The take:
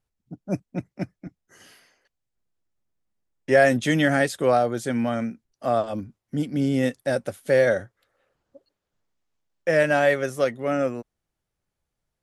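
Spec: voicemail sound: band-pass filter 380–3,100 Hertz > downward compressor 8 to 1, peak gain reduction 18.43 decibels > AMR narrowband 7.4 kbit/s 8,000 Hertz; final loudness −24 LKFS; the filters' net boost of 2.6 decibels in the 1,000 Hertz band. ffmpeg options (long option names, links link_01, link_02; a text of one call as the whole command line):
ffmpeg -i in.wav -af "highpass=380,lowpass=3100,equalizer=frequency=1000:width_type=o:gain=5,acompressor=threshold=-30dB:ratio=8,volume=12.5dB" -ar 8000 -c:a libopencore_amrnb -b:a 7400 out.amr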